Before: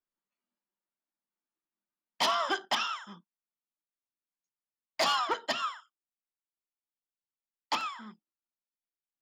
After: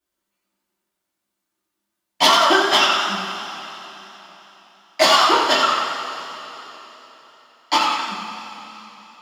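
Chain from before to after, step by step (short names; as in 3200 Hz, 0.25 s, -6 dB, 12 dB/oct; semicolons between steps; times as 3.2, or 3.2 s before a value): wow and flutter 16 cents; two-slope reverb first 0.32 s, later 3.8 s, from -18 dB, DRR -8 dB; warbling echo 91 ms, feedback 56%, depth 75 cents, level -7 dB; gain +5.5 dB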